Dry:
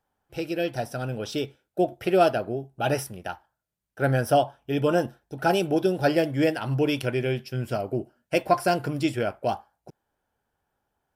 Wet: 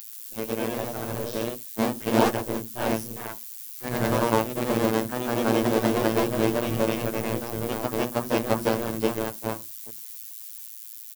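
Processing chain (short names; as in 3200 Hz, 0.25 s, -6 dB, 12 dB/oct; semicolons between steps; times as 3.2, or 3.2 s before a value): cycle switcher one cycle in 3, inverted; bell 240 Hz +12.5 dB 1.5 oct; notches 60/120/180/240/300 Hz; comb 7.1 ms; added noise violet -33 dBFS; robotiser 111 Hz; echoes that change speed 0.132 s, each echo +1 st, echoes 2; gain -6.5 dB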